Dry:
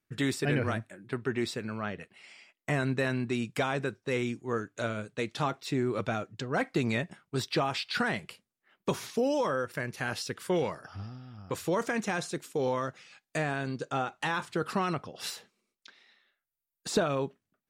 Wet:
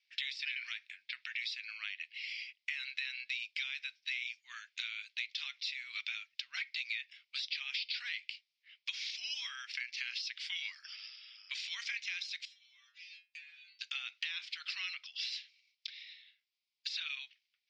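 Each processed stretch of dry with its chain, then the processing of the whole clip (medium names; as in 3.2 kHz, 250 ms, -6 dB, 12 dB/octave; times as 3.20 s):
12.45–13.81 s: compression 8:1, threshold -39 dBFS + inharmonic resonator 86 Hz, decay 0.47 s, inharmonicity 0.002
whole clip: de-esser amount 95%; elliptic band-pass 2.2–5.2 kHz, stop band 70 dB; compression 4:1, threshold -51 dBFS; trim +13.5 dB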